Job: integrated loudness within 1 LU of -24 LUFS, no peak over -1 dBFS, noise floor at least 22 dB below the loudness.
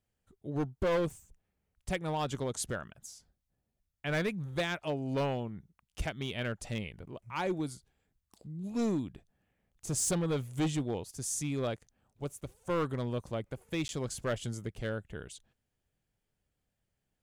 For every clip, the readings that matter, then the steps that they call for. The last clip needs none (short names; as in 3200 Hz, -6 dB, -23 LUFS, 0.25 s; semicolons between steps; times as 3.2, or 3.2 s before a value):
clipped 1.6%; flat tops at -26.0 dBFS; dropouts 1; longest dropout 11 ms; loudness -35.0 LUFS; peak -26.0 dBFS; loudness target -24.0 LUFS
-> clip repair -26 dBFS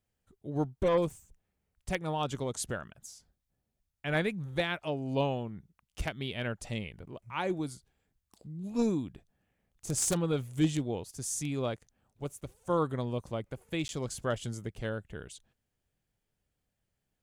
clipped 0.0%; dropouts 1; longest dropout 11 ms
-> interpolate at 13.88, 11 ms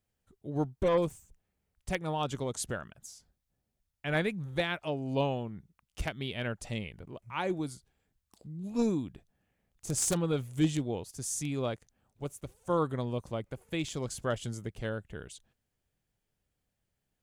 dropouts 0; loudness -34.0 LUFS; peak -17.0 dBFS; loudness target -24.0 LUFS
-> gain +10 dB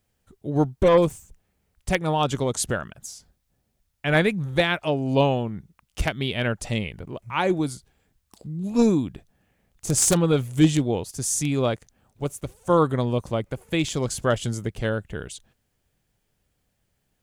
loudness -24.0 LUFS; peak -7.0 dBFS; noise floor -74 dBFS